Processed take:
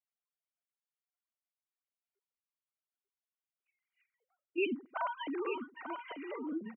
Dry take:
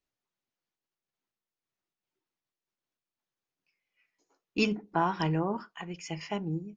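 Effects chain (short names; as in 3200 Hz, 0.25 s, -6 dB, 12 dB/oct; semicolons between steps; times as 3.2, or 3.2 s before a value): sine-wave speech; notch comb 870 Hz; echo 0.891 s -7.5 dB; gain -6 dB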